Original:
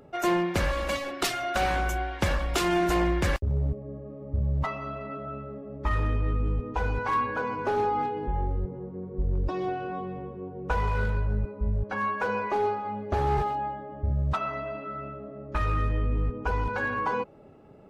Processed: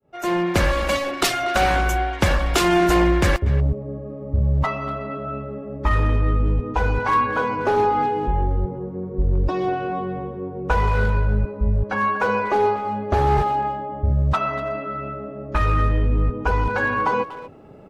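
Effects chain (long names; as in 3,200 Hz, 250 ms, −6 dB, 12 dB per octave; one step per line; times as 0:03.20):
fade in at the beginning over 0.56 s
far-end echo of a speakerphone 240 ms, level −14 dB
level +7.5 dB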